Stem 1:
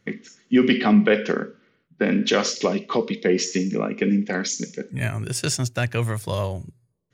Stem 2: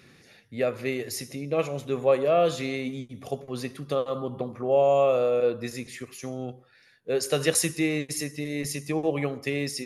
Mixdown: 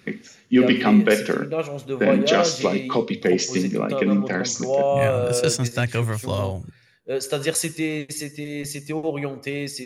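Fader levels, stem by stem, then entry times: +0.5 dB, +0.5 dB; 0.00 s, 0.00 s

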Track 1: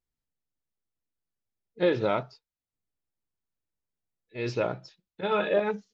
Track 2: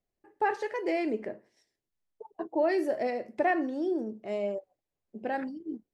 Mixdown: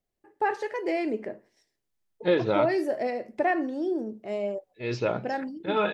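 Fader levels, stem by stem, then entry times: +1.0 dB, +1.5 dB; 0.45 s, 0.00 s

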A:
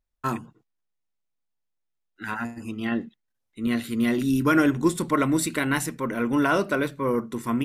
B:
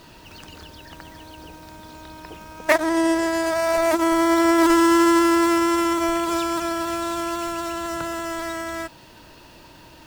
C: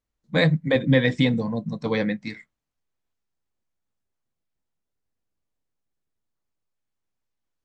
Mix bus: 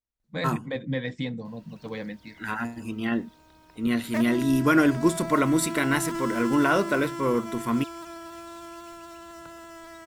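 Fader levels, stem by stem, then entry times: 0.0 dB, -15.5 dB, -11.0 dB; 0.20 s, 1.45 s, 0.00 s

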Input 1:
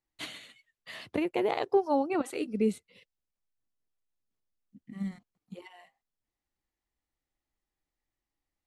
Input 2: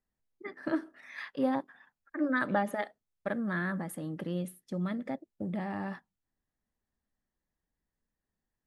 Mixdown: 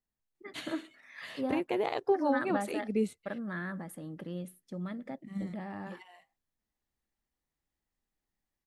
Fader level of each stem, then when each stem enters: -2.5 dB, -5.0 dB; 0.35 s, 0.00 s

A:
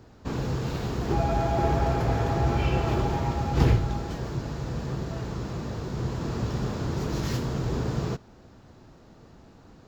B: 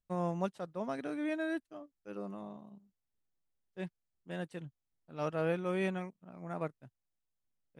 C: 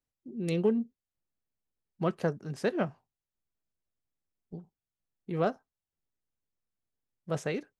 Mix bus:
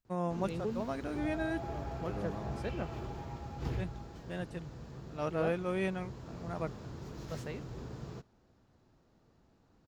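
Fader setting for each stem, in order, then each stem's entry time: -16.0 dB, 0.0 dB, -10.5 dB; 0.05 s, 0.00 s, 0.00 s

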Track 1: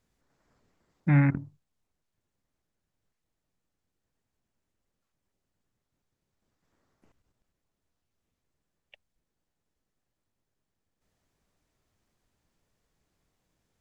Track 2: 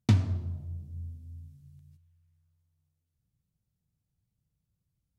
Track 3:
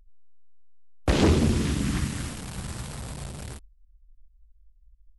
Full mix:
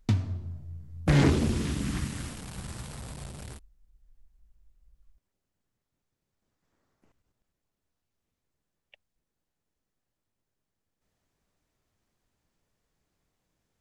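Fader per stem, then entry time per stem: -1.5 dB, -3.0 dB, -4.5 dB; 0.00 s, 0.00 s, 0.00 s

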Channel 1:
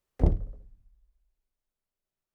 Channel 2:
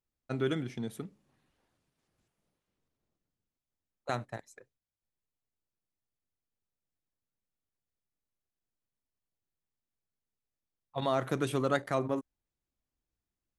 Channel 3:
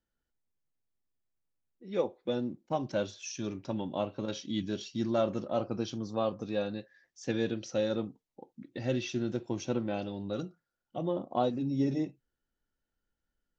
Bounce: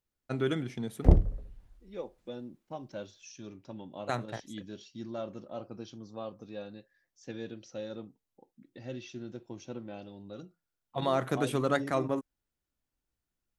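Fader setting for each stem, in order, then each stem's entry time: +3.0 dB, +1.0 dB, -9.5 dB; 0.85 s, 0.00 s, 0.00 s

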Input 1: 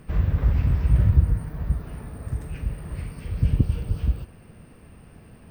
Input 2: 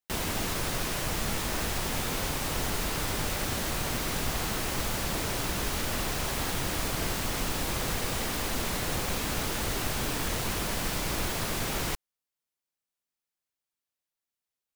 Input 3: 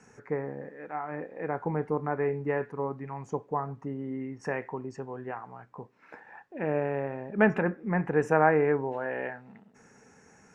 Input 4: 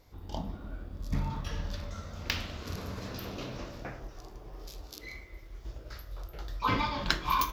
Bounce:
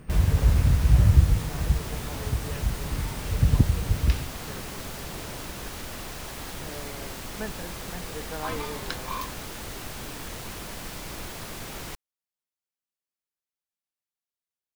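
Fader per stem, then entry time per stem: +0.5 dB, -6.5 dB, -14.0 dB, -6.5 dB; 0.00 s, 0.00 s, 0.00 s, 1.80 s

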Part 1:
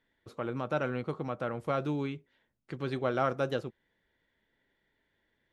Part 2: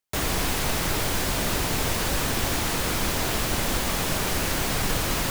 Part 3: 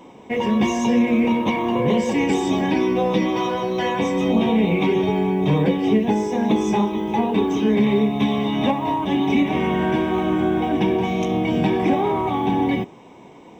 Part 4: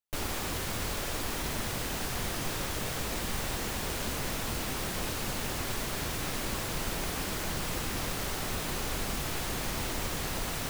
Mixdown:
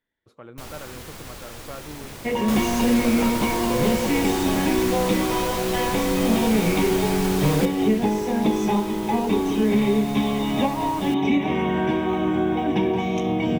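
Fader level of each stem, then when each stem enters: -7.5 dB, -4.5 dB, -2.0 dB, -5.5 dB; 0.00 s, 2.35 s, 1.95 s, 0.45 s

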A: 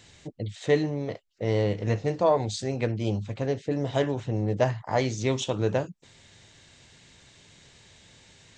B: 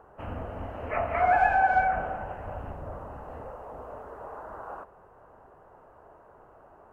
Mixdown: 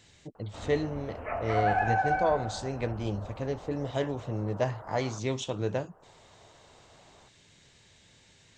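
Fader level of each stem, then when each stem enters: -5.0 dB, -5.0 dB; 0.00 s, 0.35 s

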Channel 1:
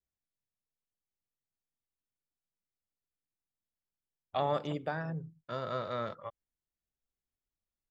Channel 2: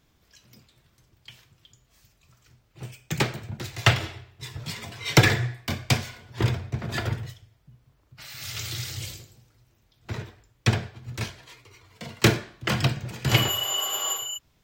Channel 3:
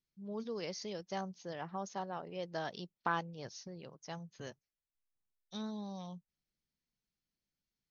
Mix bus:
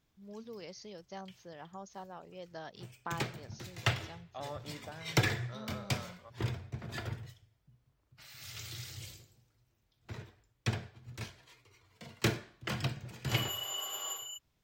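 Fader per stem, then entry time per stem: -12.0 dB, -11.5 dB, -6.0 dB; 0.00 s, 0.00 s, 0.00 s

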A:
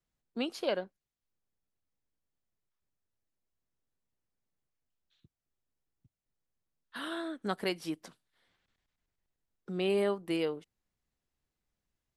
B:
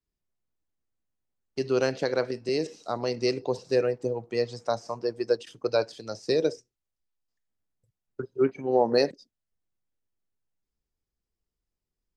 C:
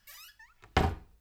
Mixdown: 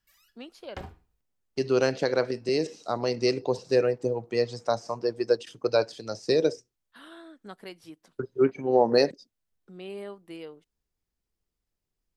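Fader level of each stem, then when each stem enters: -9.5 dB, +1.5 dB, -14.0 dB; 0.00 s, 0.00 s, 0.00 s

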